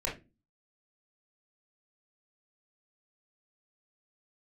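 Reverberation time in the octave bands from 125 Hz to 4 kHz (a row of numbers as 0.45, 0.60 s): 0.45, 0.45, 0.30, 0.20, 0.25, 0.20 s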